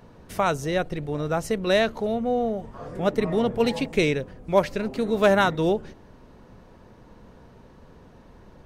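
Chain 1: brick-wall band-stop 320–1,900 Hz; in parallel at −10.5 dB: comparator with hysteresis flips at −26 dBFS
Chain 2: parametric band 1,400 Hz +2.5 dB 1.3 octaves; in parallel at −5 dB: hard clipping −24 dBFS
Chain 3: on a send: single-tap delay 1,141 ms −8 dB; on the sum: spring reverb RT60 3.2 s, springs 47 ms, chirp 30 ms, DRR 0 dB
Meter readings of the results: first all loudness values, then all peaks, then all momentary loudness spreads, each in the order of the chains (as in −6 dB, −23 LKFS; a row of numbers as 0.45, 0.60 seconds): −29.5, −21.5, −21.5 LKFS; −12.0, −6.0, −6.0 dBFS; 8, 8, 11 LU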